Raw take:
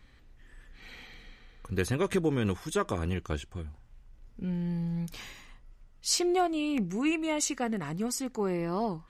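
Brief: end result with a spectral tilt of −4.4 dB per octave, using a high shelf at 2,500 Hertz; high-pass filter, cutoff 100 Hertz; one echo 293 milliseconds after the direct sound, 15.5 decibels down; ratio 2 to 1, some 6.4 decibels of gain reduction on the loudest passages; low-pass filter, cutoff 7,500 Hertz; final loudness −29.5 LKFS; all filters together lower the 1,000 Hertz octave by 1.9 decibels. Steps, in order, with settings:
high-pass filter 100 Hz
low-pass filter 7,500 Hz
parametric band 1,000 Hz −3.5 dB
high-shelf EQ 2,500 Hz +3.5 dB
downward compressor 2 to 1, threshold −35 dBFS
single-tap delay 293 ms −15.5 dB
level +6.5 dB

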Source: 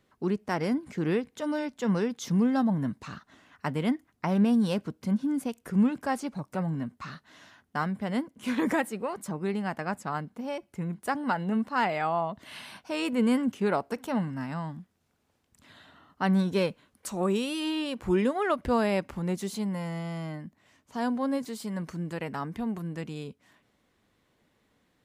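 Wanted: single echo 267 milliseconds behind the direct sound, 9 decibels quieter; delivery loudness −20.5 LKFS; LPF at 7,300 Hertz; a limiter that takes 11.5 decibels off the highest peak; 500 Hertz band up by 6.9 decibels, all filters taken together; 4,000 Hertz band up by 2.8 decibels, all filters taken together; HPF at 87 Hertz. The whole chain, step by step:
high-pass filter 87 Hz
low-pass filter 7,300 Hz
parametric band 500 Hz +8.5 dB
parametric band 4,000 Hz +4 dB
brickwall limiter −21 dBFS
single-tap delay 267 ms −9 dB
level +10 dB

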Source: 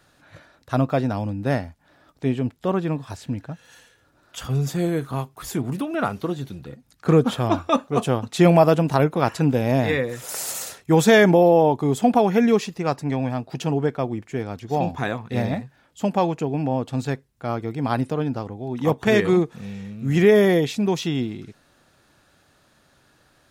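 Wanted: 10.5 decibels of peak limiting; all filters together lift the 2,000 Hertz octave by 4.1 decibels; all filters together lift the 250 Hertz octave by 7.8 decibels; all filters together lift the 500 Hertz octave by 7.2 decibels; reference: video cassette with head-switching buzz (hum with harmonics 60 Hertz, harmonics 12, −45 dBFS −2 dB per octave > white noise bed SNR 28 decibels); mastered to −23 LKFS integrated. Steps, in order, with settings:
parametric band 250 Hz +8.5 dB
parametric band 500 Hz +6 dB
parametric band 2,000 Hz +4.5 dB
brickwall limiter −5.5 dBFS
hum with harmonics 60 Hz, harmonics 12, −45 dBFS −2 dB per octave
white noise bed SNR 28 dB
level −5 dB

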